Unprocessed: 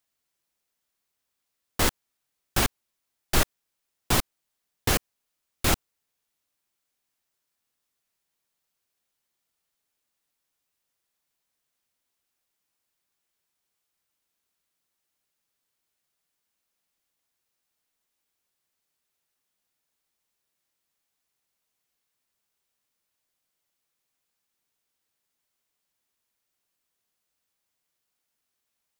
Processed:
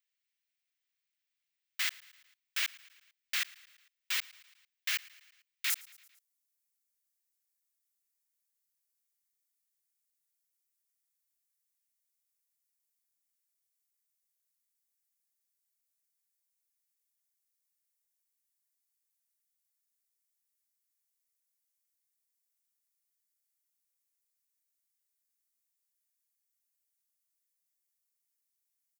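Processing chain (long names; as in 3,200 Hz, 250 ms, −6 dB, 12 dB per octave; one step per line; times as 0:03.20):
Chebyshev high-pass filter 2,000 Hz, order 3
parametric band 11,000 Hz −14 dB 1.7 octaves, from 0:05.70 2,800 Hz
repeating echo 112 ms, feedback 59%, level −22 dB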